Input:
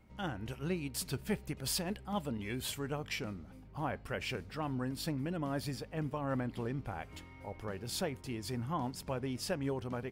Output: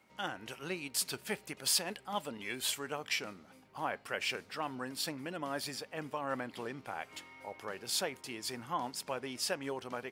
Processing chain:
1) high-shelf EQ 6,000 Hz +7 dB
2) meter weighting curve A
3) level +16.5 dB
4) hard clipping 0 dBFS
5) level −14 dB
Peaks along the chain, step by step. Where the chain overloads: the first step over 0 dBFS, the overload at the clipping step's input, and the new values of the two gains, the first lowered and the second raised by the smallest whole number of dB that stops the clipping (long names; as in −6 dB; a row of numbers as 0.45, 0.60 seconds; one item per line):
−18.0, −18.5, −2.0, −2.0, −16.0 dBFS
no step passes full scale